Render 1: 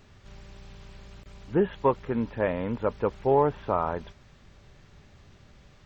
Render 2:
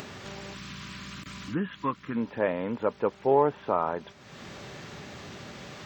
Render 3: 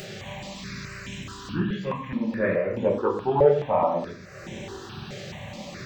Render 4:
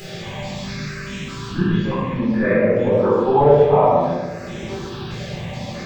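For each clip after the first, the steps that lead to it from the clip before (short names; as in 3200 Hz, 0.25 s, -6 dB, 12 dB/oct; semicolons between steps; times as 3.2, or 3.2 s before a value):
HPF 180 Hz 12 dB/oct; spectral gain 0.54–2.17, 340–980 Hz -14 dB; upward compressor, threshold -28 dBFS
shoebox room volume 76 m³, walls mixed, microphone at 1 m; step phaser 4.7 Hz 270–4600 Hz; gain +2.5 dB
shoebox room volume 530 m³, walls mixed, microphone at 4 m; gain -2.5 dB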